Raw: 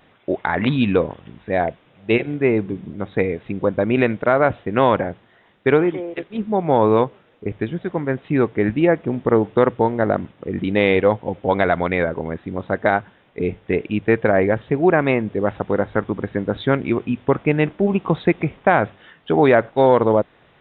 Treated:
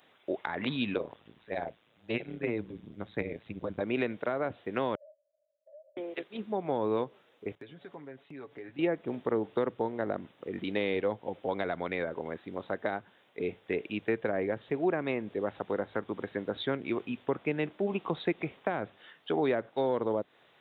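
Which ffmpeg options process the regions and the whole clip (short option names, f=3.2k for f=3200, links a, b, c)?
-filter_complex "[0:a]asettb=1/sr,asplit=3[a][b][c];[a]atrim=end=0.944[d];[b]atrim=start=0.94:end=3.81,asetpts=PTS-STARTPTS,afade=t=in:d=0.004:c=qsin,afade=t=out:st=2.866:d=0.004:c=qsin,tremolo=f=110:d=0.857,asubboost=boost=4:cutoff=230[e];[c]atrim=start=3.806[f];[d][e]acrossfade=d=0.004:c1=hsin:c2=qsin[g];[g][f]acrossfade=d=0.004:c1=qsin:c2=hsin,asettb=1/sr,asplit=3[h][i][j];[h]atrim=end=4.954[k];[i]atrim=start=4.95:end=5.97,asetpts=PTS-STARTPTS,afade=t=in:d=0.004:c=qsin,afade=t=out:st=1.016:d=0.004:c=qsin,asuperpass=centerf=600:order=8:qfactor=7.8,acompressor=threshold=-49dB:ratio=2:attack=3.2:release=140:knee=1:detection=peak[l];[j]atrim=start=5.966[m];[k][l]acrossfade=d=0.004:c1=hsin:c2=qsin[n];[n][m]acrossfade=d=0.004:c1=qsin:c2=hsin,asettb=1/sr,asplit=3[o][p][q];[o]atrim=end=7.554[r];[p]atrim=start=7.55:end=8.79,asetpts=PTS-STARTPTS,afade=t=in:d=0.004:c=qsin,afade=t=out:st=1.236:d=0.004:c=qsin,agate=range=-33dB:threshold=-38dB:ratio=3:release=100:detection=peak,aecho=1:1:7.1:0.56,atrim=end_sample=54684,acompressor=threshold=-33dB:ratio=4:attack=3.2:release=140:knee=1:detection=peak[s];[q]atrim=start=8.786[t];[r][s]acrossfade=d=0.004:c1=hsin:c2=qsin[u];[u][t]acrossfade=d=0.004:c1=qsin:c2=hsin,highpass=84,bass=f=250:g=-10,treble=f=4k:g=13,acrossover=split=380[v][w];[w]acompressor=threshold=-23dB:ratio=6[x];[v][x]amix=inputs=2:normalize=0,volume=-8.5dB"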